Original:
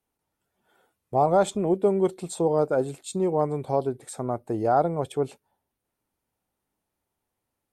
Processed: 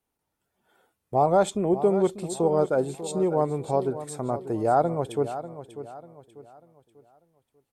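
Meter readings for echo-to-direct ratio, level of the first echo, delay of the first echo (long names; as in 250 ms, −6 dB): −12.0 dB, −12.5 dB, 593 ms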